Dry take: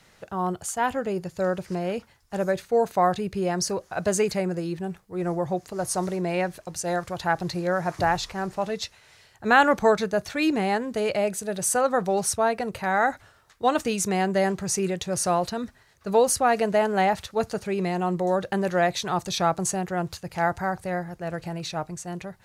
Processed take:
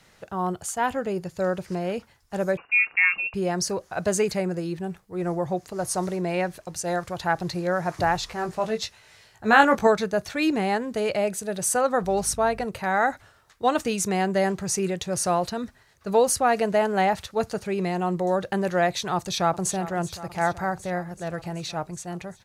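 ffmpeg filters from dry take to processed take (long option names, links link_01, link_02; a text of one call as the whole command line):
ffmpeg -i in.wav -filter_complex "[0:a]asettb=1/sr,asplit=3[link_01][link_02][link_03];[link_01]atrim=end=2.574[link_04];[link_02]atrim=start=2.57:end=3.34,asetpts=PTS-STARTPTS,afade=type=in:duration=0.004:curve=qsin,afade=type=out:start_time=0.766:duration=0.004:curve=qsin,lowpass=frequency=2500:width_type=q:width=0.5098,lowpass=frequency=2500:width_type=q:width=0.6013,lowpass=frequency=2500:width_type=q:width=0.9,lowpass=frequency=2500:width_type=q:width=2.563,afreqshift=-2900[link_05];[link_03]atrim=start=3.336[link_06];[link_04][link_05]acrossfade=duration=0.004:curve1=hsin:curve2=qsin[link_07];[link_07][link_06]acrossfade=duration=0.004:curve1=qsin:curve2=hsin,asettb=1/sr,asplit=3[link_08][link_09][link_10];[link_08]atrim=end=8.274[link_11];[link_09]atrim=start=8.27:end=9.87,asetpts=PTS-STARTPTS,afade=type=in:duration=0.004:curve=qsin,afade=type=out:start_time=1.596:duration=0.004:curve=qsin,asplit=2[link_12][link_13];[link_13]adelay=18,volume=-4.5dB[link_14];[link_12][link_14]amix=inputs=2:normalize=0,atrim=end_sample=70560[link_15];[link_10]atrim=start=9.866[link_16];[link_11][link_15]acrossfade=duration=0.004:curve1=hsin:curve2=qsin[link_17];[link_17][link_16]acrossfade=duration=0.004:curve1=qsin:curve2=hsin,asettb=1/sr,asplit=3[link_18][link_19][link_20];[link_18]atrim=end=12.034[link_21];[link_19]atrim=start=12.03:end=12.65,asetpts=PTS-STARTPTS,afade=type=in:duration=0.004:curve=qsin,afade=type=out:start_time=0.616:duration=0.004:curve=qsin,aeval=exprs='val(0)+0.00794*(sin(2*PI*50*n/s)+sin(2*PI*2*50*n/s)/2+sin(2*PI*3*50*n/s)/3+sin(2*PI*4*50*n/s)/4+sin(2*PI*5*50*n/s)/5)':channel_layout=same[link_22];[link_20]atrim=start=12.646[link_23];[link_21][link_22]acrossfade=duration=0.004:curve1=hsin:curve2=qsin[link_24];[link_24][link_23]acrossfade=duration=0.004:curve1=qsin:curve2=hsin,asplit=2[link_25][link_26];[link_26]afade=type=in:start_time=19.15:duration=0.01,afade=type=out:start_time=19.72:duration=0.01,aecho=0:1:380|760|1140|1520|1900|2280|2660|3040|3420|3800|4180:0.177828|0.133371|0.100028|0.0750212|0.0562659|0.0421994|0.0316496|0.0237372|0.0178029|0.0133522|0.0100141[link_27];[link_25][link_27]amix=inputs=2:normalize=0" out.wav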